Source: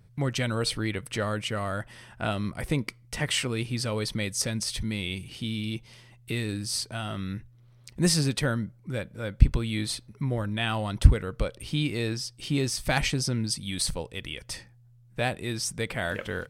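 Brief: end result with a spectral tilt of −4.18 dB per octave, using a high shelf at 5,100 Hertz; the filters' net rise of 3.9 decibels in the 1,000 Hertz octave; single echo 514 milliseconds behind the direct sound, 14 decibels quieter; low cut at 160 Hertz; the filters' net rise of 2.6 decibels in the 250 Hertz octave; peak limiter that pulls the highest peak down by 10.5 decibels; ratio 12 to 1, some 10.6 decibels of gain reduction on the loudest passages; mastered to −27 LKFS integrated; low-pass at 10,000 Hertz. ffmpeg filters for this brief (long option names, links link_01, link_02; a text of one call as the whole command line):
ffmpeg -i in.wav -af "highpass=160,lowpass=10000,equalizer=frequency=250:width_type=o:gain=4.5,equalizer=frequency=1000:width_type=o:gain=5.5,highshelf=frequency=5100:gain=-5.5,acompressor=threshold=-29dB:ratio=12,alimiter=level_in=2.5dB:limit=-24dB:level=0:latency=1,volume=-2.5dB,aecho=1:1:514:0.2,volume=10.5dB" out.wav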